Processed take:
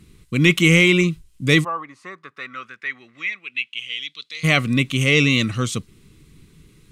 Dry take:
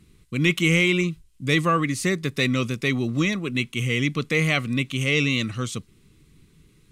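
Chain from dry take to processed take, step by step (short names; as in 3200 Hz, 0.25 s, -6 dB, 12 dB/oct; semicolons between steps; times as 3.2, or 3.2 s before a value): 1.63–4.43 band-pass 820 Hz -> 4300 Hz, Q 4.7; gain +5.5 dB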